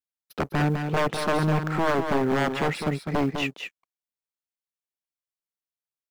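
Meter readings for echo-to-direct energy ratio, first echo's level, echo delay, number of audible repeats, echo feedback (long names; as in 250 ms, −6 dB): −6.5 dB, −6.5 dB, 203 ms, 1, repeats not evenly spaced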